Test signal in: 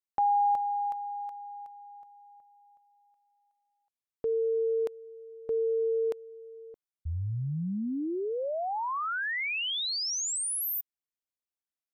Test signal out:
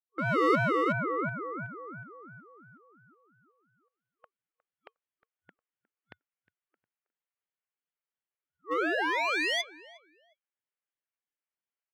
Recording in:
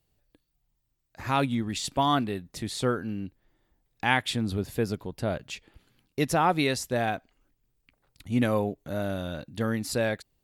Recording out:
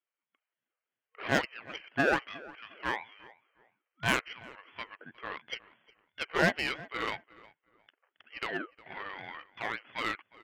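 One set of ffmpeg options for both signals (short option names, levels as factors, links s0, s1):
-filter_complex "[0:a]acrossover=split=1000[s0][s1];[s0]crystalizer=i=5:c=0[s2];[s2][s1]amix=inputs=2:normalize=0,dynaudnorm=f=250:g=3:m=3.76,afftfilt=real='re*between(b*sr/4096,780,2800)':imag='im*between(b*sr/4096,780,2800)':win_size=4096:overlap=0.75,asplit=2[s3][s4];[s4]aeval=exprs='0.1*(abs(mod(val(0)/0.1+3,4)-2)-1)':c=same,volume=0.316[s5];[s3][s5]amix=inputs=2:normalize=0,aeval=exprs='0.708*(cos(1*acos(clip(val(0)/0.708,-1,1)))-cos(1*PI/2))+0.178*(cos(6*acos(clip(val(0)/0.708,-1,1)))-cos(6*PI/2))+0.0447*(cos(8*acos(clip(val(0)/0.708,-1,1)))-cos(8*PI/2))':c=same,asplit=2[s6][s7];[s7]adelay=359,lowpass=f=1700:p=1,volume=0.112,asplit=2[s8][s9];[s9]adelay=359,lowpass=f=1700:p=1,volume=0.28[s10];[s6][s8][s10]amix=inputs=3:normalize=0,aeval=exprs='val(0)*sin(2*PI*500*n/s+500*0.4/2.9*sin(2*PI*2.9*n/s))':c=same,volume=0.376"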